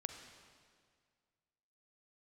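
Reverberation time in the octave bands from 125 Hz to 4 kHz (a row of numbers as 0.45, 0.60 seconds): 2.2, 2.0, 2.0, 1.9, 1.8, 1.7 seconds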